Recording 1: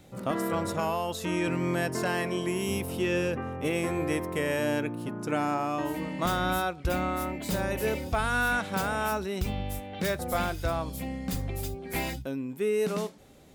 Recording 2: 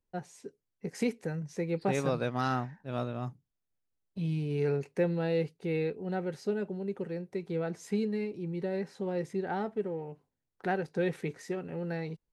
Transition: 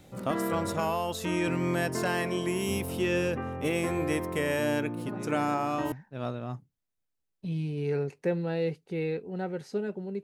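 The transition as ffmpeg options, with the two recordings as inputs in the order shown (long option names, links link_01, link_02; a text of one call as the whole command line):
ffmpeg -i cue0.wav -i cue1.wav -filter_complex "[1:a]asplit=2[link_01][link_02];[0:a]apad=whole_dur=10.23,atrim=end=10.23,atrim=end=5.922[link_03];[link_02]atrim=start=2.648:end=6.96[link_04];[link_01]atrim=start=1.69:end=2.65,asetpts=PTS-STARTPTS,volume=-15.5dB,afade=type=in:duration=0.004:curve=hsin,afade=type=out:start_time=0.956:duration=0.004:curve=hsin,adelay=4960[link_05];[link_03][link_04]acrossfade=duration=0.004:curve1=hsin:curve2=hsin[link_06];[link_06][link_05]amix=inputs=2:normalize=0" out.wav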